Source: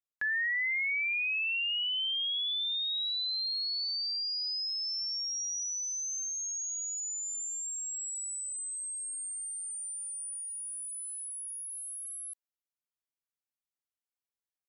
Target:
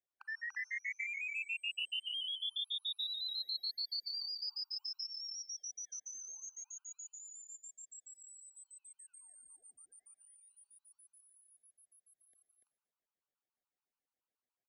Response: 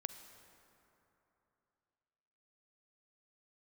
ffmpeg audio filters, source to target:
-filter_complex "[0:a]acrossover=split=690|5200[link_01][link_02][link_03];[link_02]alimiter=level_in=11dB:limit=-24dB:level=0:latency=1,volume=-11dB[link_04];[link_01][link_04][link_03]amix=inputs=3:normalize=0,adynamicsmooth=sensitivity=1:basefreq=1700,aemphasis=mode=reproduction:type=50kf[link_05];[1:a]atrim=start_sample=2205,afade=type=out:start_time=0.34:duration=0.01,atrim=end_sample=15435,asetrate=52920,aresample=44100[link_06];[link_05][link_06]afir=irnorm=-1:irlink=0,acrossover=split=370|3000[link_07][link_08][link_09];[link_08]acompressor=threshold=-59dB:ratio=2[link_10];[link_07][link_10][link_09]amix=inputs=3:normalize=0,bass=frequency=250:gain=-9,treble=frequency=4000:gain=12,aecho=1:1:290|335:0.668|0.335,afftfilt=real='re*gt(sin(2*PI*7*pts/sr)*(1-2*mod(floor(b*sr/1024/780),2)),0)':imag='im*gt(sin(2*PI*7*pts/sr)*(1-2*mod(floor(b*sr/1024/780),2)),0)':win_size=1024:overlap=0.75,volume=12.5dB"

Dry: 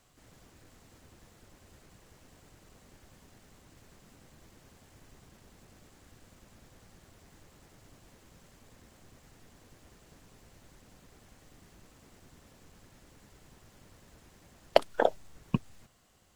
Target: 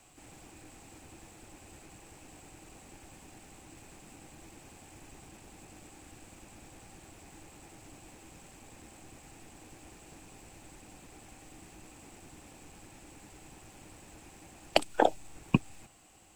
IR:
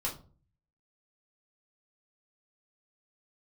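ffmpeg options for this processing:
-filter_complex "[0:a]equalizer=frequency=315:width_type=o:width=0.33:gain=9,equalizer=frequency=800:width_type=o:width=0.33:gain=9,equalizer=frequency=2500:width_type=o:width=0.33:gain=9,equalizer=frequency=8000:width_type=o:width=0.33:gain=11,acrossover=split=290|2600[link_01][link_02][link_03];[link_02]alimiter=limit=-12.5dB:level=0:latency=1:release=249[link_04];[link_01][link_04][link_03]amix=inputs=3:normalize=0,volume=2.5dB"

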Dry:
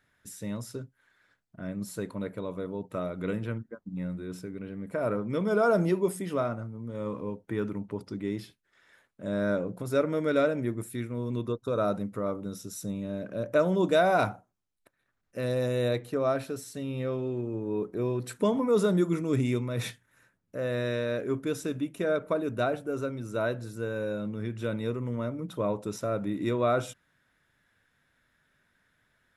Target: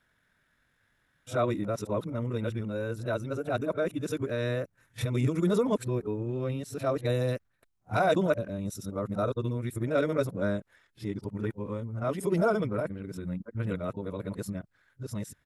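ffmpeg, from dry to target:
ffmpeg -i in.wav -af "areverse,atempo=1.9,asubboost=boost=2:cutoff=140" out.wav

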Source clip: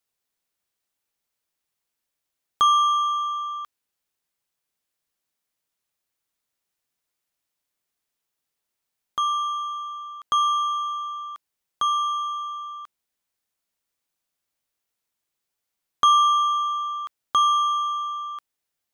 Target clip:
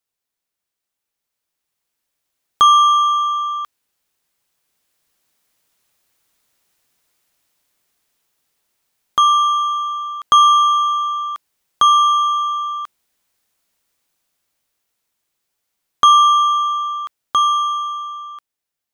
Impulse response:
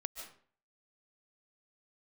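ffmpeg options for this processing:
-af "dynaudnorm=framelen=220:gausssize=17:maxgain=16.5dB,volume=-1dB"

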